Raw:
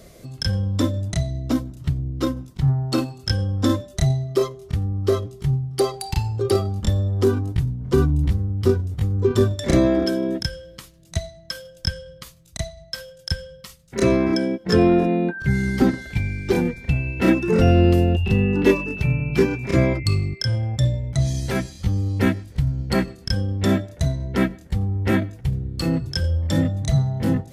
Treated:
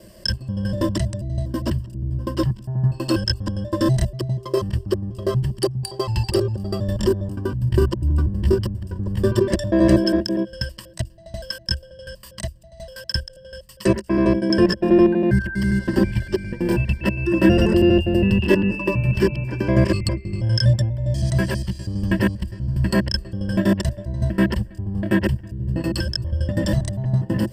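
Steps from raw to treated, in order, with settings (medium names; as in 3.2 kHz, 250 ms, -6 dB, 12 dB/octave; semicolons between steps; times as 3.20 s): slices played last to first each 81 ms, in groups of 3; rippled EQ curve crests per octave 1.3, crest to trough 13 dB; endings held to a fixed fall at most 400 dB/s; trim -1.5 dB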